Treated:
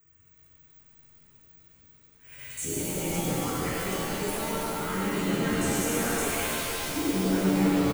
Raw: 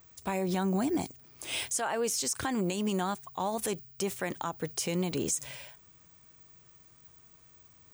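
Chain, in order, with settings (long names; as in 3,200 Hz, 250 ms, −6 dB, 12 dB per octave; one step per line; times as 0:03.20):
played backwards from end to start
in parallel at −3.5 dB: bit reduction 7 bits
on the sum: phaser with its sweep stopped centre 1,800 Hz, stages 4
on a send: echo with shifted repeats 333 ms, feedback 50%, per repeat −54 Hz, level −8.5 dB
on the sum: regular buffer underruns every 0.19 s, samples 1,024, zero, from 0:00.65
reverb with rising layers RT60 3 s, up +7 semitones, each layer −2 dB, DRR −8 dB
level −8 dB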